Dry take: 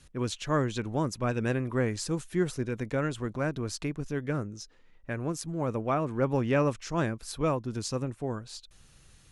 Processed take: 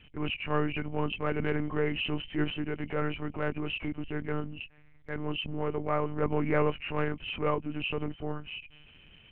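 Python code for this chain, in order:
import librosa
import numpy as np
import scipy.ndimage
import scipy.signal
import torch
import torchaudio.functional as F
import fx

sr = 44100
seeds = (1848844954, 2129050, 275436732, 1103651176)

y = fx.freq_compress(x, sr, knee_hz=2100.0, ratio=4.0)
y = fx.lpc_monotone(y, sr, seeds[0], pitch_hz=150.0, order=8)
y = fx.transient(y, sr, attack_db=-4, sustain_db=1)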